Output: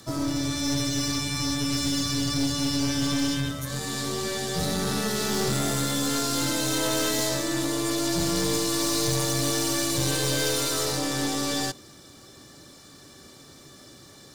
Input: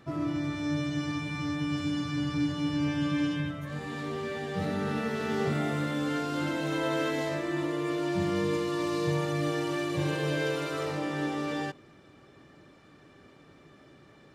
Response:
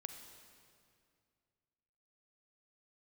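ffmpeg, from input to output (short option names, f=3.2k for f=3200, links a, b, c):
-filter_complex "[0:a]aexciter=amount=3.5:drive=9.7:freq=3.8k,asplit=2[a][b];[b]acrusher=bits=4:mode=log:mix=0:aa=0.000001,volume=-6dB[c];[a][c]amix=inputs=2:normalize=0,afreqshift=-14,aeval=exprs='(tanh(14.1*val(0)+0.45)-tanh(0.45))/14.1':c=same,volume=2.5dB"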